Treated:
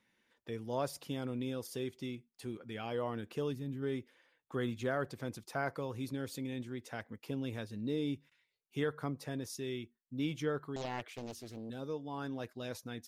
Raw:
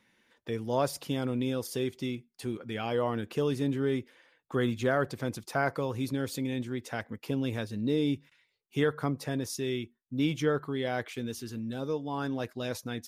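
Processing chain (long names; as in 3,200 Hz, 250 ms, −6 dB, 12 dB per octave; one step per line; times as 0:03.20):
0:03.52–0:03.83: gain on a spectral selection 270–11,000 Hz −8 dB
0:10.76–0:11.70: highs frequency-modulated by the lows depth 0.91 ms
level −7.5 dB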